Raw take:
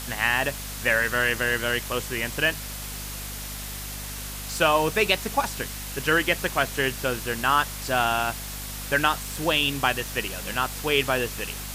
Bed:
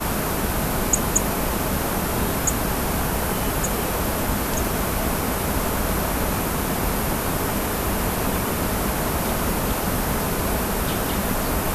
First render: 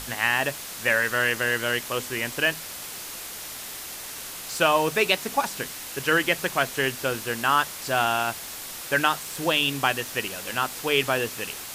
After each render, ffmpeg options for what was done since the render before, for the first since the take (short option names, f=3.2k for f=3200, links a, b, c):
-af "bandreject=f=50:t=h:w=6,bandreject=f=100:t=h:w=6,bandreject=f=150:t=h:w=6,bandreject=f=200:t=h:w=6,bandreject=f=250:t=h:w=6"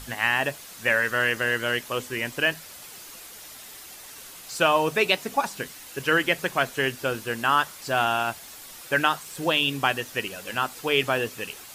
-af "afftdn=nr=8:nf=-37"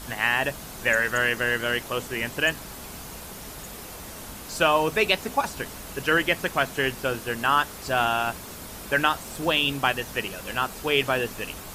-filter_complex "[1:a]volume=-18.5dB[a];[0:a][a]amix=inputs=2:normalize=0"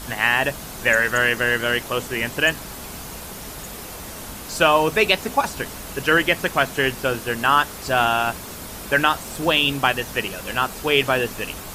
-af "volume=4.5dB,alimiter=limit=-3dB:level=0:latency=1"